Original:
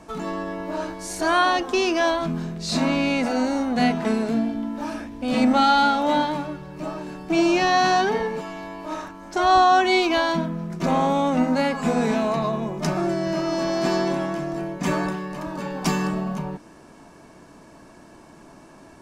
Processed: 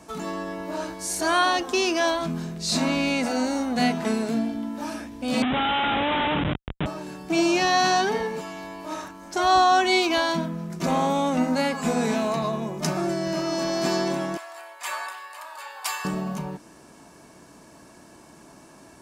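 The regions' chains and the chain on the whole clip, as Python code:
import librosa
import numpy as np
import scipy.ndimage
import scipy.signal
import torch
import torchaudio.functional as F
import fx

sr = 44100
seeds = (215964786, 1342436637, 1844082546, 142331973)

y = fx.chain(x, sr, fx.peak_eq(hz=400.0, db=-14.0, octaves=0.46),
    fx.schmitt(flips_db=-30.0),
    fx.resample_bad(factor=6, down='none', up='filtered'), at=(5.42, 6.86))
y = fx.chain(y, sr, fx.highpass(hz=810.0, slope=24),
    fx.peak_eq(hz=5900.0, db=-9.5, octaves=0.34), at=(14.37, 16.05))
y = scipy.signal.sosfilt(scipy.signal.butter(2, 45.0, 'highpass', fs=sr, output='sos'), y)
y = fx.high_shelf(y, sr, hz=4900.0, db=10.0)
y = y * 10.0 ** (-2.5 / 20.0)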